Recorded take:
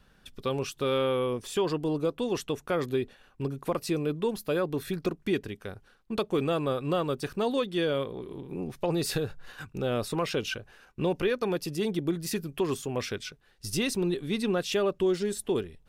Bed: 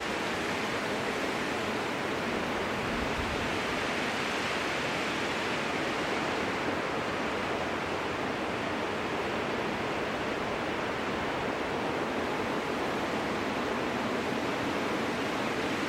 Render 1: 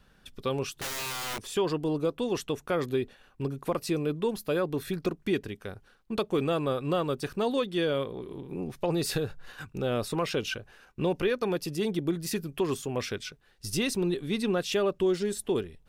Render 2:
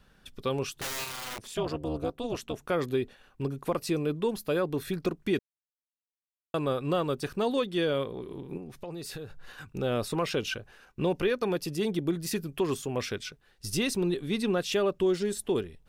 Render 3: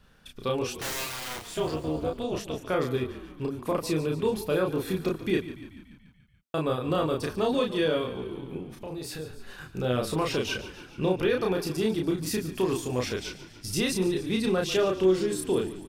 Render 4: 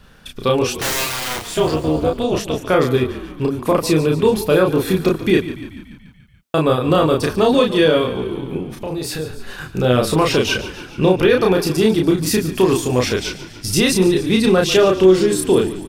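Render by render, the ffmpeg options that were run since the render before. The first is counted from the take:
-filter_complex "[0:a]asettb=1/sr,asplit=3[a][b][c];[a]atrim=end=0.724[d];[b]atrim=start=0.72:end=1.46,asetpts=PTS-STARTPTS,afade=t=in:d=0.004:c=qsin,afade=t=out:st=0.736:d=0.004:c=qsin,aeval=exprs='(mod(29.9*val(0)+1,2)-1)/29.9':c=same[e];[c]atrim=start=1.456[f];[d][e]acrossfade=d=0.004:c1=hsin:c2=qsin[g];[g][f]acrossfade=d=0.004:c1=qsin:c2=hsin"
-filter_complex "[0:a]asettb=1/sr,asplit=3[a][b][c];[a]atrim=end=1.044[d];[b]atrim=start=1.04:end=2.6,asetpts=PTS-STARTPTS,afade=t=in:d=0.004:c=qsin,afade=t=out:st=1.556:d=0.004:c=qsin,tremolo=f=230:d=0.889[e];[c]atrim=start=2.596[f];[d][e]acrossfade=d=0.004:c1=hsin:c2=qsin[g];[g][f]acrossfade=d=0.004:c1=qsin:c2=hsin,asettb=1/sr,asplit=3[h][i][j];[h]atrim=end=8.574[k];[i]atrim=start=8.57:end=9.75,asetpts=PTS-STARTPTS,afade=t=in:d=0.004:c=qsin,afade=t=out:st=1.176:d=0.004:c=qsin,acompressor=threshold=-41dB:ratio=2.5:attack=3.2:release=140:knee=1:detection=peak[l];[j]atrim=start=9.746[m];[k][l]acrossfade=d=0.004:c1=hsin:c2=qsin[n];[n][m]acrossfade=d=0.004:c1=qsin:c2=hsin,asplit=3[o][p][q];[o]atrim=end=5.39,asetpts=PTS-STARTPTS,afade=t=out:st=5.386:d=0.004:c=hsin[r];[p]atrim=start=5.39:end=6.54,asetpts=PTS-STARTPTS,volume=0[s];[q]atrim=start=6.54,asetpts=PTS-STARTPTS,afade=t=in:d=0.004:c=hsin[t];[r][s][t]concat=n=3:v=0:a=1"
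-filter_complex "[0:a]asplit=2[a][b];[b]adelay=32,volume=-2.5dB[c];[a][c]amix=inputs=2:normalize=0,asplit=8[d][e][f][g][h][i][j][k];[e]adelay=144,afreqshift=-36,volume=-14dB[l];[f]adelay=288,afreqshift=-72,volume=-18.2dB[m];[g]adelay=432,afreqshift=-108,volume=-22.3dB[n];[h]adelay=576,afreqshift=-144,volume=-26.5dB[o];[i]adelay=720,afreqshift=-180,volume=-30.6dB[p];[j]adelay=864,afreqshift=-216,volume=-34.8dB[q];[k]adelay=1008,afreqshift=-252,volume=-38.9dB[r];[d][l][m][n][o][p][q][r]amix=inputs=8:normalize=0"
-af "volume=12dB,alimiter=limit=-3dB:level=0:latency=1"

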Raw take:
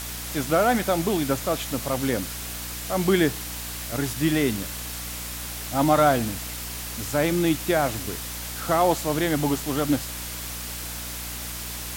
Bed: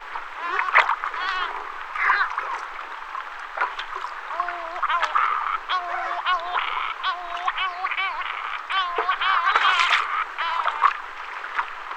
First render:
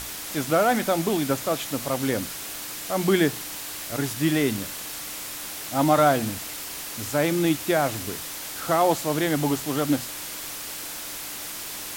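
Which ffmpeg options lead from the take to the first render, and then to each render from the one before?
-af "bandreject=f=60:t=h:w=6,bandreject=f=120:t=h:w=6,bandreject=f=180:t=h:w=6,bandreject=f=240:t=h:w=6"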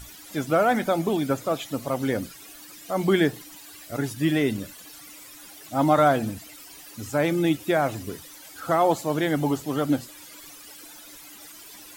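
-af "afftdn=nr=15:nf=-35"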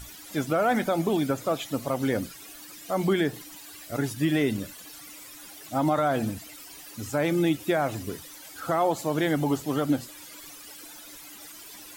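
-af "alimiter=limit=-14.5dB:level=0:latency=1:release=86"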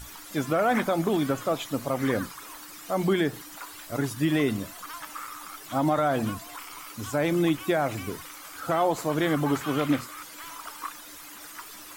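-filter_complex "[1:a]volume=-18.5dB[a];[0:a][a]amix=inputs=2:normalize=0"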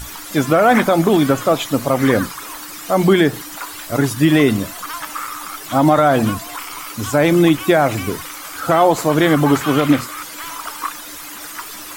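-af "volume=11.5dB,alimiter=limit=-3dB:level=0:latency=1"

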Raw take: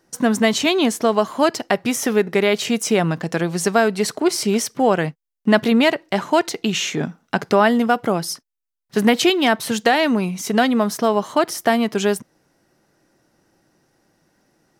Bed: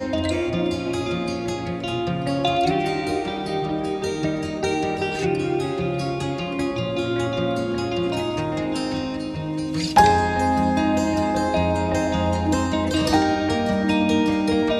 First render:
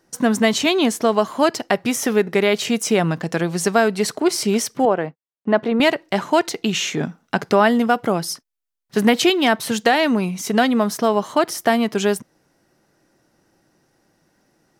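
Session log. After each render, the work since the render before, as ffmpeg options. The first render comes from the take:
-filter_complex "[0:a]asettb=1/sr,asplit=3[a][b][c];[a]atrim=end=4.854[d];[b]atrim=start=4.85:end=5.8,asetpts=PTS-STARTPTS,afade=t=in:d=0.004:c=qsin,afade=t=out:st=0.946:d=0.004:c=qsin,bandpass=f=600:t=q:w=0.64[e];[c]atrim=start=5.796[f];[d][e]acrossfade=d=0.004:c1=hsin:c2=qsin[g];[g][f]acrossfade=d=0.004:c1=qsin:c2=hsin"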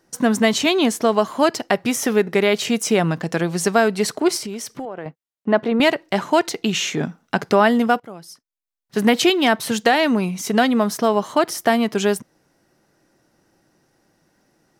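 -filter_complex "[0:a]asettb=1/sr,asplit=3[a][b][c];[a]atrim=end=4.374[d];[b]atrim=start=4.37:end=5.06,asetpts=PTS-STARTPTS,afade=t=in:d=0.004:c=qsin,afade=t=out:st=0.686:d=0.004:c=qsin,acompressor=threshold=-26dB:ratio=8:attack=3.2:release=140:knee=1:detection=peak[e];[c]atrim=start=5.056[f];[d][e]acrossfade=d=0.004:c1=hsin:c2=qsin[g];[g][f]acrossfade=d=0.004:c1=qsin:c2=hsin,asplit=2[h][i];[h]atrim=end=8,asetpts=PTS-STARTPTS,afade=t=out:st=7.996:d=0.004:c=hsin:silence=0.133352[j];[i]atrim=start=8,asetpts=PTS-STARTPTS,afade=t=in:d=1.13:c=qua:silence=0.133352[k];[j][k]concat=n=2:v=0:a=1"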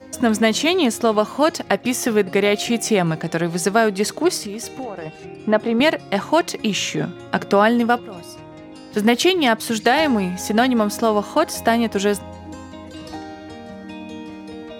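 -filter_complex "[1:a]volume=-14.5dB[a];[0:a][a]amix=inputs=2:normalize=0"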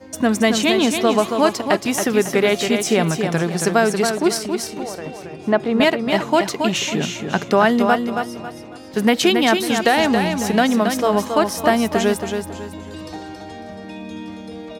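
-af "aecho=1:1:275|550|825|1100:0.501|0.16|0.0513|0.0164"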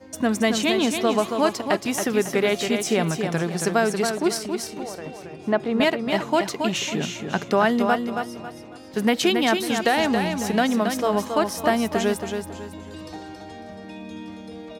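-af "volume=-4.5dB"

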